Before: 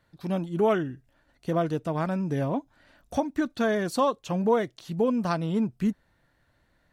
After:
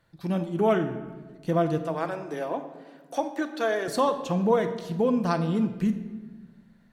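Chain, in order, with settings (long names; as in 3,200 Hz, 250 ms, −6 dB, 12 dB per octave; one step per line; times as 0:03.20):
0:01.78–0:03.88: high-pass filter 330 Hz 24 dB per octave
rectangular room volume 1,100 cubic metres, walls mixed, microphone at 0.74 metres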